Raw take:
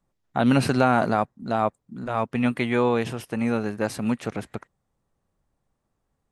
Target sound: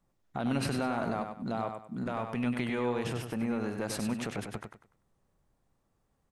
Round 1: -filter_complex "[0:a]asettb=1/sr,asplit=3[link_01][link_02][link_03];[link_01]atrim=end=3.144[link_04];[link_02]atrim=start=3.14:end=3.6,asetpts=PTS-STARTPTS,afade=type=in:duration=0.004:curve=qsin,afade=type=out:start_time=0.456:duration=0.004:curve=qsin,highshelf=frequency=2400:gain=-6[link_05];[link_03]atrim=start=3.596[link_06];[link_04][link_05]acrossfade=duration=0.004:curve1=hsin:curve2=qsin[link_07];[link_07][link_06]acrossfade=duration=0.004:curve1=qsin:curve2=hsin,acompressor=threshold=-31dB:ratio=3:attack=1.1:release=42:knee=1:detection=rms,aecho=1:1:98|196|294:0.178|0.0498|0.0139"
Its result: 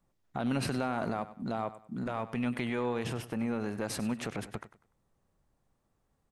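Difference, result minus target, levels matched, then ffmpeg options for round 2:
echo-to-direct −8.5 dB
-filter_complex "[0:a]asettb=1/sr,asplit=3[link_01][link_02][link_03];[link_01]atrim=end=3.144[link_04];[link_02]atrim=start=3.14:end=3.6,asetpts=PTS-STARTPTS,afade=type=in:duration=0.004:curve=qsin,afade=type=out:start_time=0.456:duration=0.004:curve=qsin,highshelf=frequency=2400:gain=-6[link_05];[link_03]atrim=start=3.596[link_06];[link_04][link_05]acrossfade=duration=0.004:curve1=hsin:curve2=qsin[link_07];[link_07][link_06]acrossfade=duration=0.004:curve1=qsin:curve2=hsin,acompressor=threshold=-31dB:ratio=3:attack=1.1:release=42:knee=1:detection=rms,aecho=1:1:98|196|294|392:0.473|0.132|0.0371|0.0104"

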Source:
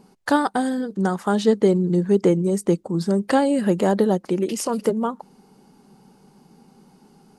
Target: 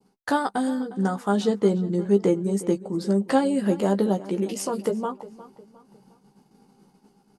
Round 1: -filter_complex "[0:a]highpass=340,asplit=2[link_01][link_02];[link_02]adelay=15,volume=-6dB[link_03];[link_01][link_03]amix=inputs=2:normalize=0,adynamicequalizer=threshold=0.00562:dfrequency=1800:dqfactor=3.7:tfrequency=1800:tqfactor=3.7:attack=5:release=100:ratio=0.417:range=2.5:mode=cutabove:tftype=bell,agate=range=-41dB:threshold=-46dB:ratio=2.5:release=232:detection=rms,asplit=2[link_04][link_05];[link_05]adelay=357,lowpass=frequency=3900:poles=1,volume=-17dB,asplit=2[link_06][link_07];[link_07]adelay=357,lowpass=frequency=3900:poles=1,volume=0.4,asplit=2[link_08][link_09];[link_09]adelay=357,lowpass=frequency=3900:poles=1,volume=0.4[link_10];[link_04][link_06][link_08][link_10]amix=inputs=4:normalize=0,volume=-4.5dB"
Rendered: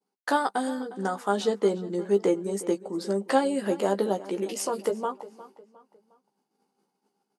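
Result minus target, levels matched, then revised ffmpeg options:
250 Hz band −3.5 dB
-filter_complex "[0:a]asplit=2[link_01][link_02];[link_02]adelay=15,volume=-6dB[link_03];[link_01][link_03]amix=inputs=2:normalize=0,adynamicequalizer=threshold=0.00562:dfrequency=1800:dqfactor=3.7:tfrequency=1800:tqfactor=3.7:attack=5:release=100:ratio=0.417:range=2.5:mode=cutabove:tftype=bell,agate=range=-41dB:threshold=-46dB:ratio=2.5:release=232:detection=rms,asplit=2[link_04][link_05];[link_05]adelay=357,lowpass=frequency=3900:poles=1,volume=-17dB,asplit=2[link_06][link_07];[link_07]adelay=357,lowpass=frequency=3900:poles=1,volume=0.4,asplit=2[link_08][link_09];[link_09]adelay=357,lowpass=frequency=3900:poles=1,volume=0.4[link_10];[link_04][link_06][link_08][link_10]amix=inputs=4:normalize=0,volume=-4.5dB"

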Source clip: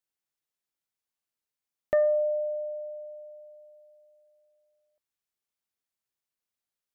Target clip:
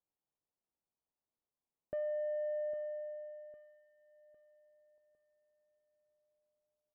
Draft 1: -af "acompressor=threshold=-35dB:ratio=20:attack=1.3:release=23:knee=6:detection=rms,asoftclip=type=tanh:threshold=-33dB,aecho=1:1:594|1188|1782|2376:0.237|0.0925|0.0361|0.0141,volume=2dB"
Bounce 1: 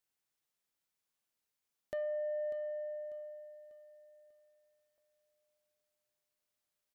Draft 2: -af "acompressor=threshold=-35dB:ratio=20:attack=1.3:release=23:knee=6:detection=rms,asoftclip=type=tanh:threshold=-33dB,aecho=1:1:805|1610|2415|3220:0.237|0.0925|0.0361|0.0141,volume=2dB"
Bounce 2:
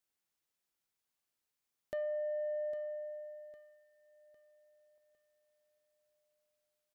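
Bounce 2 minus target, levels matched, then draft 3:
1,000 Hz band +3.0 dB
-af "acompressor=threshold=-35dB:ratio=20:attack=1.3:release=23:knee=6:detection=rms,lowpass=frequency=1000:width=0.5412,lowpass=frequency=1000:width=1.3066,asoftclip=type=tanh:threshold=-33dB,aecho=1:1:805|1610|2415|3220:0.237|0.0925|0.0361|0.0141,volume=2dB"

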